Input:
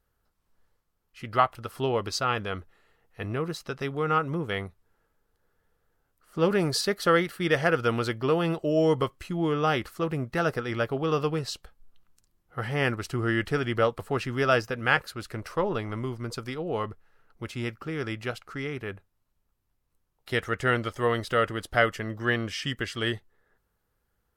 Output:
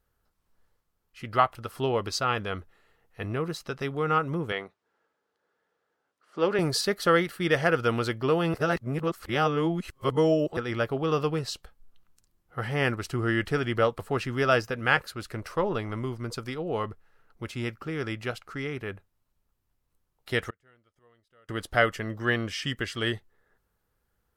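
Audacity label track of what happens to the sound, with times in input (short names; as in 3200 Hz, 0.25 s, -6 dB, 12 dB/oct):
4.520000	6.590000	BPF 300–5500 Hz
8.540000	10.570000	reverse
20.500000	21.490000	flipped gate shuts at -31 dBFS, range -37 dB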